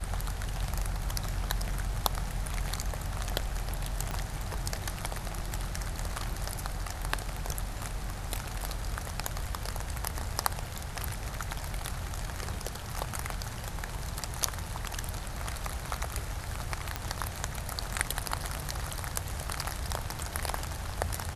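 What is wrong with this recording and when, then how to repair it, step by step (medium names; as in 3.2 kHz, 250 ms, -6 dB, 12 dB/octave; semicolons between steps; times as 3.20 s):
4.11 s: pop -18 dBFS
16.96 s: pop -15 dBFS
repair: de-click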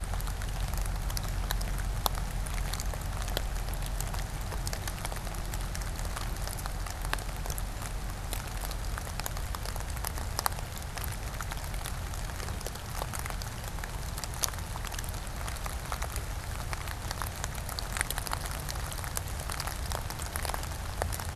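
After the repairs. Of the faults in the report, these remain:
4.11 s: pop
16.96 s: pop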